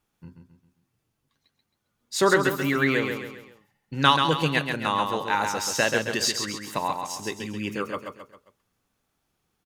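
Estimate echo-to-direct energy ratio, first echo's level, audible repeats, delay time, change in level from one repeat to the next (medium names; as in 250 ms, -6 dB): -4.5 dB, -5.5 dB, 4, 134 ms, -7.0 dB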